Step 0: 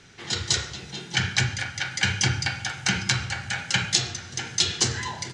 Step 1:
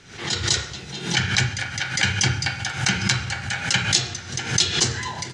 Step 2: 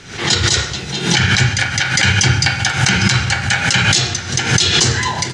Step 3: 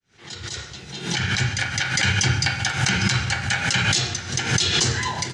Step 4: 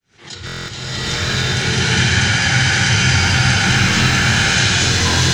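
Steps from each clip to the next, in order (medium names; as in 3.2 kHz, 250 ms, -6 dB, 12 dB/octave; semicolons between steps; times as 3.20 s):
swell ahead of each attack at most 97 dB/s; trim +2 dB
loudness maximiser +12 dB; trim -1 dB
fade-in on the opening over 1.74 s; trim -7 dB
buffer glitch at 0.45/3.18/4.30 s, samples 1024, times 9; loudness maximiser +18.5 dB; swelling reverb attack 880 ms, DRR -10 dB; trim -14.5 dB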